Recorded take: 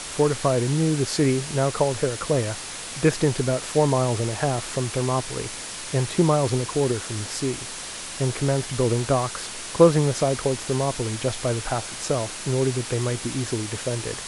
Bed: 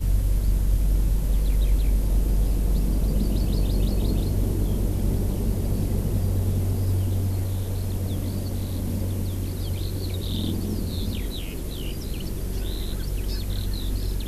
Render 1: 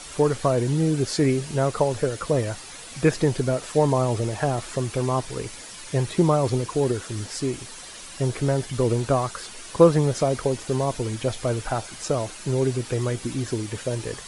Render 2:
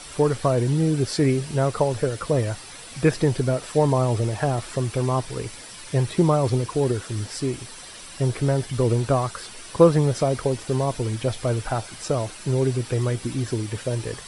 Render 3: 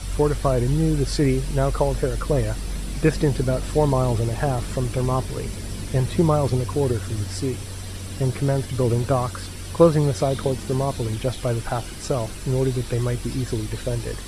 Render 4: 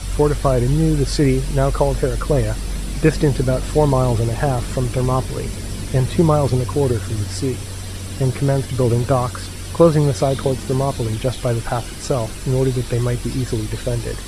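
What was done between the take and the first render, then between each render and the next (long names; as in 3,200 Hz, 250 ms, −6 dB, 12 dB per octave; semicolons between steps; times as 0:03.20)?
broadband denoise 9 dB, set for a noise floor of −35 dBFS
parametric band 110 Hz +3.5 dB 0.77 octaves; notch filter 6,700 Hz, Q 8.3
mix in bed −7 dB
level +4 dB; brickwall limiter −1 dBFS, peak gain reduction 2.5 dB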